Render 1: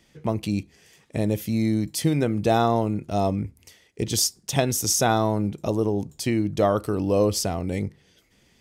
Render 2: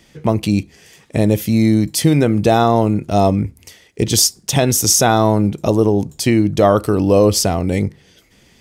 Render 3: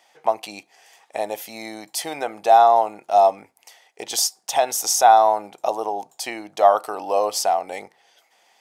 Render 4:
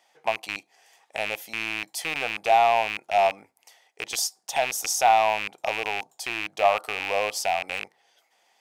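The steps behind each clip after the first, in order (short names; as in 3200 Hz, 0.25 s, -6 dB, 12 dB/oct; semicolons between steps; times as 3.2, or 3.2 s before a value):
maximiser +10.5 dB; gain -1 dB
resonant high-pass 770 Hz, resonance Q 4.9; gain -7.5 dB
rattling part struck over -42 dBFS, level -10 dBFS; gain -6 dB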